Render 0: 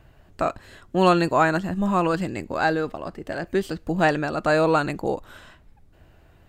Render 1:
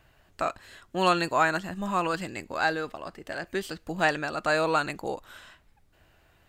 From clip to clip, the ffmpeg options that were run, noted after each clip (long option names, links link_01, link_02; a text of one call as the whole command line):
ffmpeg -i in.wav -af "tiltshelf=frequency=760:gain=-5.5,volume=-5dB" out.wav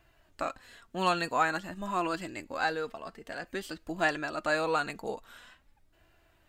ffmpeg -i in.wav -af "flanger=delay=2.9:depth=1.6:regen=48:speed=0.49:shape=sinusoidal" out.wav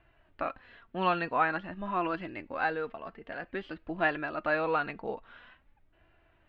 ffmpeg -i in.wav -af "lowpass=frequency=3000:width=0.5412,lowpass=frequency=3000:width=1.3066" out.wav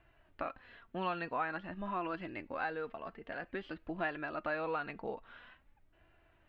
ffmpeg -i in.wav -af "acompressor=threshold=-35dB:ratio=2,volume=-2dB" out.wav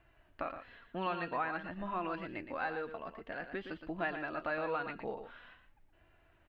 ffmpeg -i in.wav -af "aecho=1:1:117:0.355" out.wav